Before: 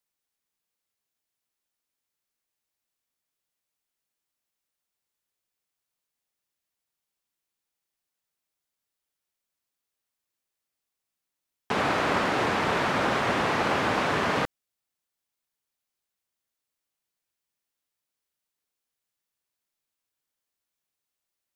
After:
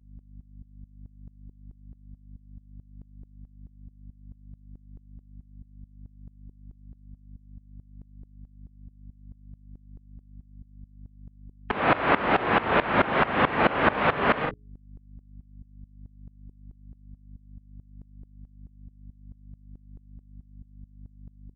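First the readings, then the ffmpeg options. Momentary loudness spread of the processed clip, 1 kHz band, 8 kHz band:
5 LU, +2.5 dB, below −30 dB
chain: -filter_complex "[0:a]afftdn=noise_reduction=18:noise_floor=-42,lowpass=frequency=3100:width=0.5412,lowpass=frequency=3100:width=1.3066,bandreject=frequency=60:width_type=h:width=6,bandreject=frequency=120:width_type=h:width=6,bandreject=frequency=180:width_type=h:width=6,bandreject=frequency=240:width_type=h:width=6,bandreject=frequency=300:width_type=h:width=6,bandreject=frequency=360:width_type=h:width=6,bandreject=frequency=420:width_type=h:width=6,aeval=exprs='val(0)+0.00282*(sin(2*PI*50*n/s)+sin(2*PI*2*50*n/s)/2+sin(2*PI*3*50*n/s)/3+sin(2*PI*4*50*n/s)/4+sin(2*PI*5*50*n/s)/5)':channel_layout=same,asplit=2[link_01][link_02];[link_02]aecho=0:1:40|57:0.596|0.15[link_03];[link_01][link_03]amix=inputs=2:normalize=0,aeval=exprs='val(0)*pow(10,-19*if(lt(mod(-4.6*n/s,1),2*abs(-4.6)/1000),1-mod(-4.6*n/s,1)/(2*abs(-4.6)/1000),(mod(-4.6*n/s,1)-2*abs(-4.6)/1000)/(1-2*abs(-4.6)/1000))/20)':channel_layout=same,volume=7.5dB"

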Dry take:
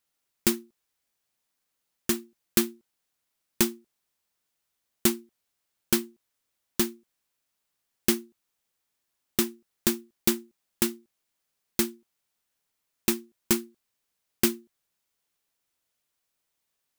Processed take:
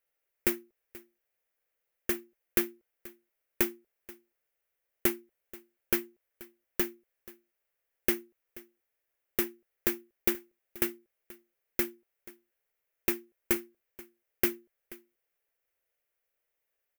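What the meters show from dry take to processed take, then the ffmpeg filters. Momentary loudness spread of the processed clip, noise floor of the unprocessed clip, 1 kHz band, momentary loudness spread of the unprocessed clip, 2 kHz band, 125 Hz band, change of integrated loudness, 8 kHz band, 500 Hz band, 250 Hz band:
21 LU, −81 dBFS, −4.5 dB, 8 LU, −1.0 dB, −9.0 dB, −4.0 dB, −9.5 dB, −2.5 dB, −7.0 dB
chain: -af "equalizer=frequency=125:width_type=o:width=1:gain=-9,equalizer=frequency=250:width_type=o:width=1:gain=-12,equalizer=frequency=500:width_type=o:width=1:gain=8,equalizer=frequency=1000:width_type=o:width=1:gain=-8,equalizer=frequency=2000:width_type=o:width=1:gain=5,equalizer=frequency=4000:width_type=o:width=1:gain=-12,equalizer=frequency=8000:width_type=o:width=1:gain=-10,aecho=1:1:482:0.0944"

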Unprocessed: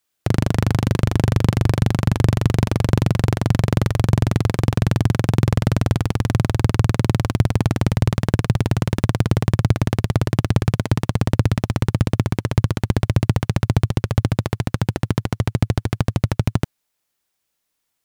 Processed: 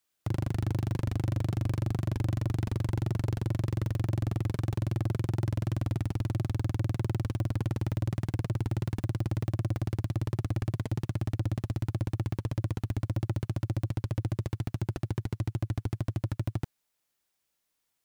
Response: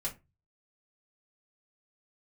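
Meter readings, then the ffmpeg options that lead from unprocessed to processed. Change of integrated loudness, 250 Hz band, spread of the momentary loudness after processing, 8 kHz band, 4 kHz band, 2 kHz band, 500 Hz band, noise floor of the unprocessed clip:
−12.0 dB, −13.5 dB, 3 LU, below −15 dB, −16.5 dB, −16.5 dB, −14.5 dB, −76 dBFS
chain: -af "asoftclip=type=tanh:threshold=-19dB,volume=-4.5dB"

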